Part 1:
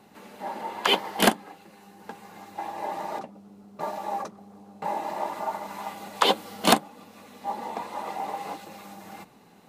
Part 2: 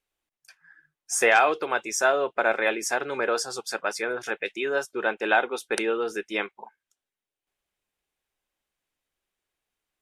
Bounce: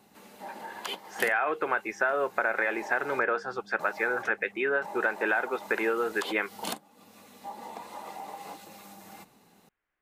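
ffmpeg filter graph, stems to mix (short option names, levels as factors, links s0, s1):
-filter_complex "[0:a]highshelf=f=4700:g=8,acompressor=threshold=0.0251:ratio=2.5,volume=0.501[s0];[1:a]alimiter=limit=0.2:level=0:latency=1,lowpass=f=1800:t=q:w=2.1,volume=1[s1];[s0][s1]amix=inputs=2:normalize=0,acompressor=threshold=0.0708:ratio=5"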